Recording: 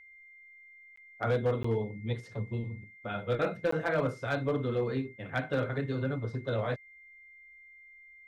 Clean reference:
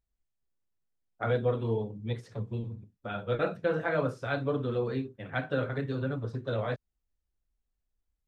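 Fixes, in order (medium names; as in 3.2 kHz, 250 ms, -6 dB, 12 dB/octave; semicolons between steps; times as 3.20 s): clip repair -22 dBFS; band-stop 2.1 kHz, Q 30; interpolate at 0.96/1.63/3.71 s, 14 ms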